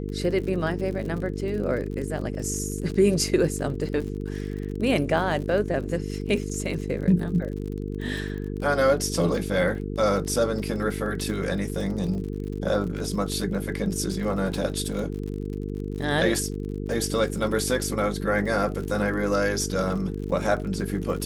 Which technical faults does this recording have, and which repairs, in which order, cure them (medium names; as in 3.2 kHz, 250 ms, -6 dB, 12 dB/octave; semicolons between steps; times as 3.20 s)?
buzz 50 Hz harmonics 9 -31 dBFS
crackle 46 per s -33 dBFS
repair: de-click; de-hum 50 Hz, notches 9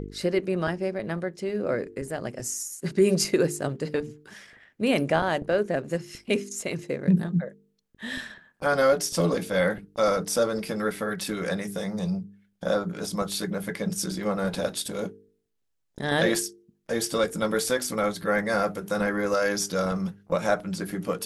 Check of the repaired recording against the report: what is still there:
nothing left